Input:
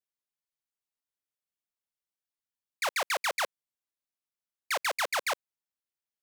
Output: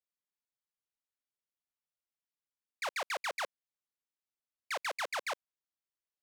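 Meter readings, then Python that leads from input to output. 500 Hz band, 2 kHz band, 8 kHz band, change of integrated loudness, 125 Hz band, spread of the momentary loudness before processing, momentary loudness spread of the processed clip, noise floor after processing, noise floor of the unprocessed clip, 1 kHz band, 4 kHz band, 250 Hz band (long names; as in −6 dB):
−6.0 dB, −6.5 dB, −9.5 dB, −6.5 dB, can't be measured, 5 LU, 5 LU, below −85 dBFS, below −85 dBFS, −6.0 dB, −7.5 dB, −6.0 dB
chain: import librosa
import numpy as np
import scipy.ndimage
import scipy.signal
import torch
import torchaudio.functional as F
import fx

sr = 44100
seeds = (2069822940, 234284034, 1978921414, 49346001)

p1 = fx.high_shelf(x, sr, hz=9900.0, db=-10.5)
p2 = 10.0 ** (-32.0 / 20.0) * np.tanh(p1 / 10.0 ** (-32.0 / 20.0))
p3 = p1 + F.gain(torch.from_numpy(p2), -12.0).numpy()
y = F.gain(torch.from_numpy(p3), -7.0).numpy()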